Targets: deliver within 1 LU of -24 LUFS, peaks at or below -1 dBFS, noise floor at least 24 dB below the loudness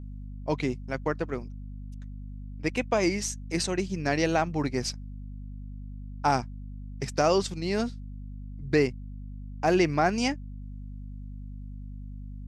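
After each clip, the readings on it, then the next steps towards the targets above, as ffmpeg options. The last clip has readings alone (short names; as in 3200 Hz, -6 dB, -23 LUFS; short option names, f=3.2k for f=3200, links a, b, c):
hum 50 Hz; harmonics up to 250 Hz; hum level -37 dBFS; loudness -28.0 LUFS; peak -10.0 dBFS; loudness target -24.0 LUFS
-> -af "bandreject=f=50:t=h:w=6,bandreject=f=100:t=h:w=6,bandreject=f=150:t=h:w=6,bandreject=f=200:t=h:w=6,bandreject=f=250:t=h:w=6"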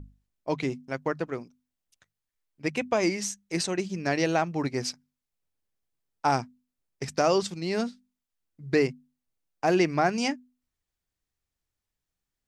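hum none; loudness -28.0 LUFS; peak -10.5 dBFS; loudness target -24.0 LUFS
-> -af "volume=4dB"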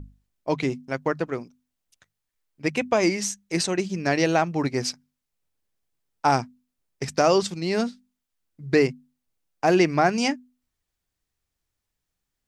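loudness -24.0 LUFS; peak -6.5 dBFS; noise floor -83 dBFS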